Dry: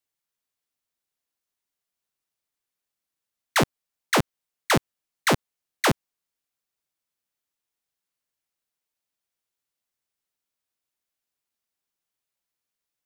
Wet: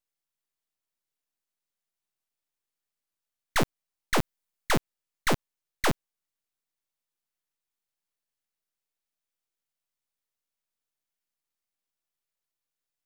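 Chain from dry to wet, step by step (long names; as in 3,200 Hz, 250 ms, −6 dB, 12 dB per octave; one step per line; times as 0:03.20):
0:04.18–0:04.71: high-shelf EQ 8,800 Hz +5.5 dB
half-wave rectification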